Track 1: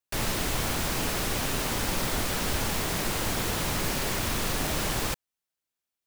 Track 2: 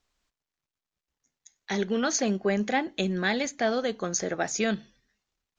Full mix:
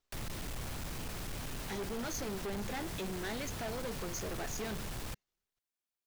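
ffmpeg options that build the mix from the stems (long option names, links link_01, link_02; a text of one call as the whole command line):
ffmpeg -i stem1.wav -i stem2.wav -filter_complex "[0:a]acrossover=split=190[link_01][link_02];[link_02]acompressor=threshold=-40dB:ratio=2[link_03];[link_01][link_03]amix=inputs=2:normalize=0,volume=-7dB[link_04];[1:a]equalizer=frequency=400:width_type=o:width=0.32:gain=5.5,flanger=delay=2.9:depth=9.5:regen=78:speed=0.53:shape=triangular,volume=-3.5dB[link_05];[link_04][link_05]amix=inputs=2:normalize=0,asoftclip=type=hard:threshold=-36dB" out.wav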